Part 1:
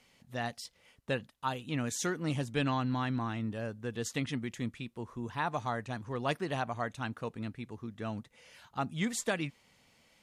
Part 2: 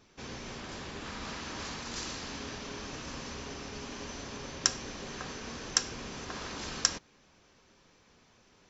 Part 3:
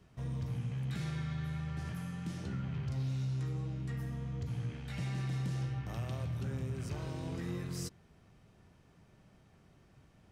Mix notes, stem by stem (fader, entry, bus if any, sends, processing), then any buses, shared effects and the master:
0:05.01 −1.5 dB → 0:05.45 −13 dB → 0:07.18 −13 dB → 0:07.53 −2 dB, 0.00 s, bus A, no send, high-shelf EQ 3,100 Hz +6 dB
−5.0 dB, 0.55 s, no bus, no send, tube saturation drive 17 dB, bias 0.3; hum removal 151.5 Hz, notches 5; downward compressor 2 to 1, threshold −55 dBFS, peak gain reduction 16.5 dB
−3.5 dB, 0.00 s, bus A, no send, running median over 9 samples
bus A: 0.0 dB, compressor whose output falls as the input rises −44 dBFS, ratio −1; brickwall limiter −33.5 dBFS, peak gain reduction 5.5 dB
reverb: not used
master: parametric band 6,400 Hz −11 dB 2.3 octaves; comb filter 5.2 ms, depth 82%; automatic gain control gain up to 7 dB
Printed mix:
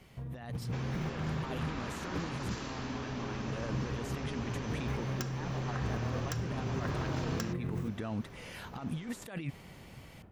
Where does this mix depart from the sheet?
stem 2 −5.0 dB → +5.0 dB
master: missing comb filter 5.2 ms, depth 82%

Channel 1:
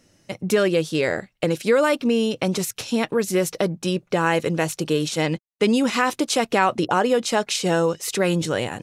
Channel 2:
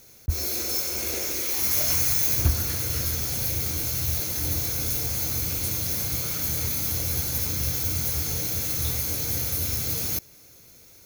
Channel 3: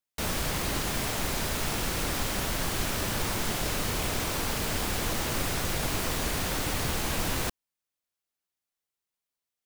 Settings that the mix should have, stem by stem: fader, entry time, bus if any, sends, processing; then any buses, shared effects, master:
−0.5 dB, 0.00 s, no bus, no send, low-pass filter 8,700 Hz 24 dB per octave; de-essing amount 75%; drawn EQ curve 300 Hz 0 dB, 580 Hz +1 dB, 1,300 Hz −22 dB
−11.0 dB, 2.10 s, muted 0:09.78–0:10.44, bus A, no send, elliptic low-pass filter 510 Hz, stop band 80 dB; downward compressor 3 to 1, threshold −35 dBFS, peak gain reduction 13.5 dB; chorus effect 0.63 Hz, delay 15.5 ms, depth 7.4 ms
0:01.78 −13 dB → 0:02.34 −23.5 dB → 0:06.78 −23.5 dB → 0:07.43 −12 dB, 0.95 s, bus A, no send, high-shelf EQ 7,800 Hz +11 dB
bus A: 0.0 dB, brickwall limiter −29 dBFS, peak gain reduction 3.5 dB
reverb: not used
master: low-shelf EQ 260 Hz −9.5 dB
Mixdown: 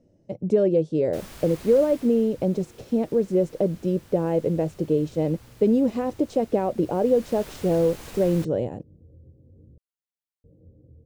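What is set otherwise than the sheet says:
stem 1: missing de-essing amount 75%
stem 3: missing high-shelf EQ 7,800 Hz +11 dB
master: missing low-shelf EQ 260 Hz −9.5 dB

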